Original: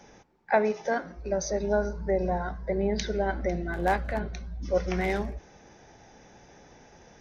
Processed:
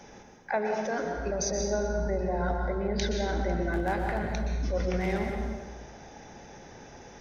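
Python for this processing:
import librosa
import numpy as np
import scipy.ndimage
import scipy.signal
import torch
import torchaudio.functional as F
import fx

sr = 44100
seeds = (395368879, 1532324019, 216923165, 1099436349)

p1 = fx.over_compress(x, sr, threshold_db=-33.0, ratio=-0.5)
p2 = x + (p1 * 10.0 ** (1.5 / 20.0))
p3 = fx.rev_plate(p2, sr, seeds[0], rt60_s=1.4, hf_ratio=0.75, predelay_ms=110, drr_db=2.5)
y = p3 * 10.0 ** (-6.5 / 20.0)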